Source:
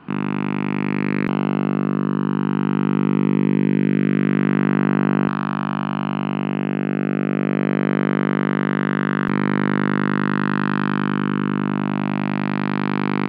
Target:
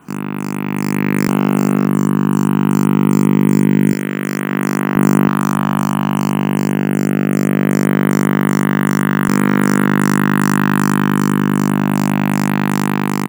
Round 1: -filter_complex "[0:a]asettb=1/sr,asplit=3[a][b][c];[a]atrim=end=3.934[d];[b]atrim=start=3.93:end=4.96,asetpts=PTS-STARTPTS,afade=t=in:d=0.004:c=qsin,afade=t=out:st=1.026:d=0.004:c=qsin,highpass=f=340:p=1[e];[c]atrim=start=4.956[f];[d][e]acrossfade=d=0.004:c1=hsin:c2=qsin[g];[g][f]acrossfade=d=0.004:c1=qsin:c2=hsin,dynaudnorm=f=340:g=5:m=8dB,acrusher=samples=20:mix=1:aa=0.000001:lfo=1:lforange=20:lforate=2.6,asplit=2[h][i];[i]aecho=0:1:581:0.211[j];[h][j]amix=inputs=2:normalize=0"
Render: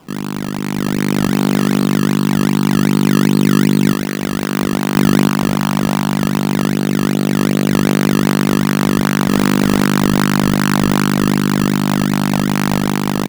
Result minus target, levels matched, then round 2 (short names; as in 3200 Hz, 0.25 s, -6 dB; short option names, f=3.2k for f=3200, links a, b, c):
decimation with a swept rate: distortion +13 dB
-filter_complex "[0:a]asettb=1/sr,asplit=3[a][b][c];[a]atrim=end=3.934[d];[b]atrim=start=3.93:end=4.96,asetpts=PTS-STARTPTS,afade=t=in:d=0.004:c=qsin,afade=t=out:st=1.026:d=0.004:c=qsin,highpass=f=340:p=1[e];[c]atrim=start=4.956[f];[d][e]acrossfade=d=0.004:c1=hsin:c2=qsin[g];[g][f]acrossfade=d=0.004:c1=qsin:c2=hsin,dynaudnorm=f=340:g=5:m=8dB,acrusher=samples=4:mix=1:aa=0.000001:lfo=1:lforange=4:lforate=2.6,asplit=2[h][i];[i]aecho=0:1:581:0.211[j];[h][j]amix=inputs=2:normalize=0"